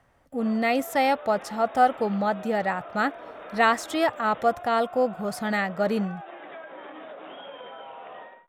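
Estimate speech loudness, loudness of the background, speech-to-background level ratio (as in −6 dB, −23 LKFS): −25.0 LKFS, −41.5 LKFS, 16.5 dB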